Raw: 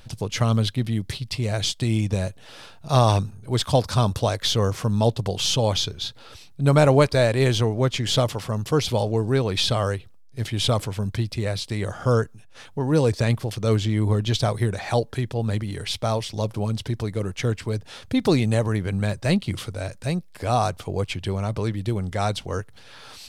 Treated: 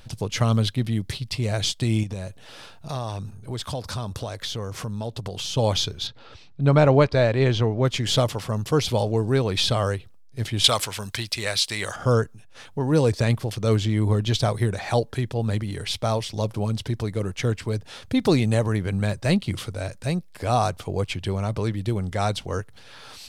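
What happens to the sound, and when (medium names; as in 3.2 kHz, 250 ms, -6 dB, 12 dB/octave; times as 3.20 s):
2.03–5.57 s: compression 4:1, threshold -28 dBFS
6.07–7.85 s: distance through air 140 m
10.64–11.96 s: tilt shelf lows -10 dB, about 670 Hz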